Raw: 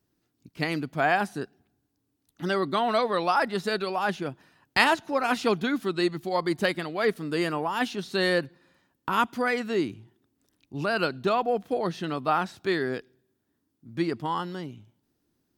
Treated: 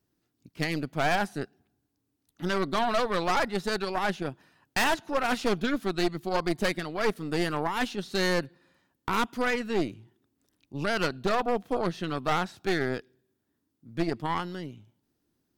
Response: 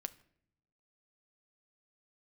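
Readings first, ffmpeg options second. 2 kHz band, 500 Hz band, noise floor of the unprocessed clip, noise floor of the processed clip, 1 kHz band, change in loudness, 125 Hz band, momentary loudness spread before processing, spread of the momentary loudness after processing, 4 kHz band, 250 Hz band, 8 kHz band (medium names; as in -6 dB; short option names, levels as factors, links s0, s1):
-2.0 dB, -2.0 dB, -77 dBFS, -79 dBFS, -2.5 dB, -2.0 dB, +0.5 dB, 10 LU, 9 LU, -1.0 dB, -1.5 dB, +4.0 dB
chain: -af "aeval=exprs='0.668*(cos(1*acos(clip(val(0)/0.668,-1,1)))-cos(1*PI/2))+0.168*(cos(6*acos(clip(val(0)/0.668,-1,1)))-cos(6*PI/2))':c=same,aeval=exprs='clip(val(0),-1,0.188)':c=same,volume=0.794"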